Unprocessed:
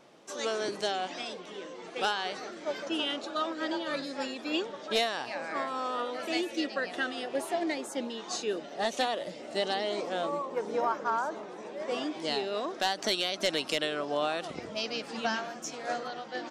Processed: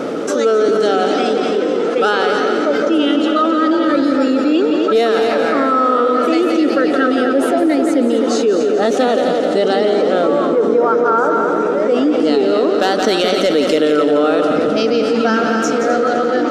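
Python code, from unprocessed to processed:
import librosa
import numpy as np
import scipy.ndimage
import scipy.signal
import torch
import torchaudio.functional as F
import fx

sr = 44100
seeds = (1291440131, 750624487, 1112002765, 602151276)

p1 = fx.small_body(x, sr, hz=(280.0, 440.0, 1300.0), ring_ms=30, db=18)
p2 = p1 + fx.echo_heads(p1, sr, ms=86, heads='second and third', feedback_pct=49, wet_db=-9.0, dry=0)
p3 = fx.env_flatten(p2, sr, amount_pct=70)
y = p3 * librosa.db_to_amplitude(-1.5)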